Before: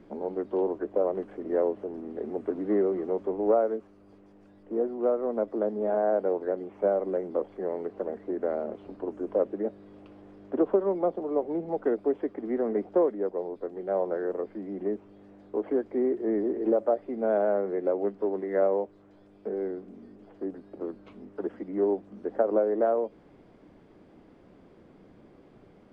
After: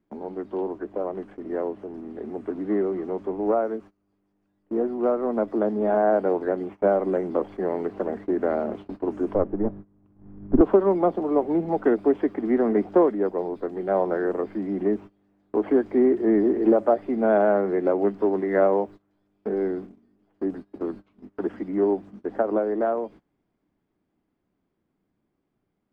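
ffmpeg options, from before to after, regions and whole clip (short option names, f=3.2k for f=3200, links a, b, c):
-filter_complex "[0:a]asettb=1/sr,asplit=3[a][b][c];[a]atrim=end=9.344[d];[b]atrim=start=9.34:end=10.61,asetpts=PTS-STARTPTS,afade=t=in:d=0.004:c=qsin,afade=t=out:st=1.266:d=0.004:c=qsin,aeval=exprs='if(lt(val(0),0),0.708*val(0),val(0))':c=same,lowpass=1.2k,asubboost=boost=11.5:cutoff=240[e];[c]atrim=start=10.606[f];[d][e]acrossfade=d=0.004:c1=hsin:c2=qsin[g];[g][f]acrossfade=d=0.004:c1=qsin:c2=hsin,agate=range=-22dB:threshold=-43dB:ratio=16:detection=peak,equalizer=f=510:t=o:w=0.72:g=-7.5,dynaudnorm=f=530:g=17:m=7.5dB,volume=2.5dB"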